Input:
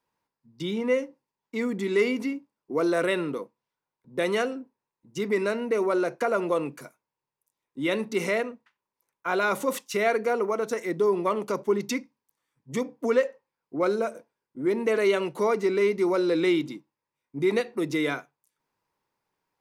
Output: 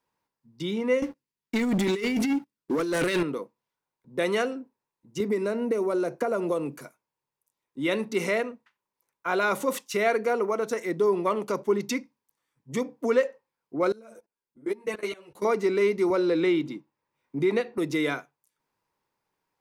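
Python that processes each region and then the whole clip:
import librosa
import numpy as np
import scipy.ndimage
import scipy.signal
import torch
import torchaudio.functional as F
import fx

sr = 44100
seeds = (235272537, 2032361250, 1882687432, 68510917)

y = fx.chain(x, sr, fx.peak_eq(hz=760.0, db=-13.0, octaves=1.4),
    fx.over_compress(threshold_db=-32.0, ratio=-0.5),
    fx.leveller(passes=3), at=(1.02, 3.23))
y = fx.chain(y, sr, fx.peak_eq(hz=2200.0, db=-8.0, octaves=2.8),
    fx.band_squash(depth_pct=100), at=(5.2, 6.79))
y = fx.chain(y, sr, fx.high_shelf(hz=4600.0, db=5.5),
    fx.level_steps(step_db=23),
    fx.ensemble(), at=(13.92, 15.45))
y = fx.chain(y, sr, fx.peak_eq(hz=11000.0, db=-8.0, octaves=2.0),
    fx.band_squash(depth_pct=40), at=(16.1, 17.78))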